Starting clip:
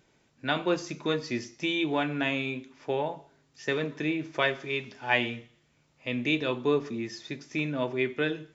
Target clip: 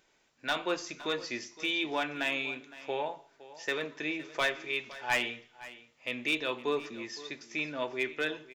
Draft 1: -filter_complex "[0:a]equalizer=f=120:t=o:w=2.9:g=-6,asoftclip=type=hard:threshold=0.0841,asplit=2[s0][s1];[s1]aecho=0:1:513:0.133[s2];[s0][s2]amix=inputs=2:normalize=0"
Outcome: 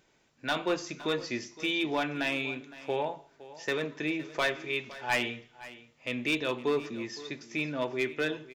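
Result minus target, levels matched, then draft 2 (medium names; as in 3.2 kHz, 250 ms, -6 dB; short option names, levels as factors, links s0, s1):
125 Hz band +7.0 dB
-filter_complex "[0:a]equalizer=f=120:t=o:w=2.9:g=-15.5,asoftclip=type=hard:threshold=0.0841,asplit=2[s0][s1];[s1]aecho=0:1:513:0.133[s2];[s0][s2]amix=inputs=2:normalize=0"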